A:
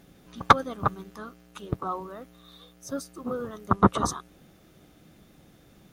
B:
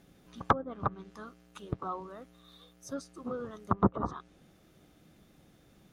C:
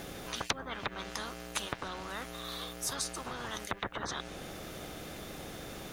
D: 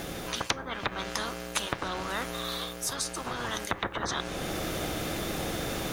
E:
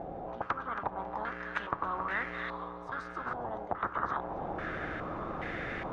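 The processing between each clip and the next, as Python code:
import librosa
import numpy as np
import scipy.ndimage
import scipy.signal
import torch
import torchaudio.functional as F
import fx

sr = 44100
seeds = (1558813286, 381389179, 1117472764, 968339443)

y1 = fx.env_lowpass_down(x, sr, base_hz=860.0, full_db=-18.5)
y1 = y1 * librosa.db_to_amplitude(-5.5)
y2 = fx.spectral_comp(y1, sr, ratio=10.0)
y3 = fx.rider(y2, sr, range_db=10, speed_s=0.5)
y3 = fx.rev_fdn(y3, sr, rt60_s=1.1, lf_ratio=1.0, hf_ratio=0.25, size_ms=18.0, drr_db=13.5)
y3 = y3 * librosa.db_to_amplitude(6.0)
y4 = fx.echo_thinned(y3, sr, ms=274, feedback_pct=51, hz=420.0, wet_db=-9)
y4 = fx.filter_held_lowpass(y4, sr, hz=2.4, low_hz=760.0, high_hz=1900.0)
y4 = y4 * librosa.db_to_amplitude(-7.0)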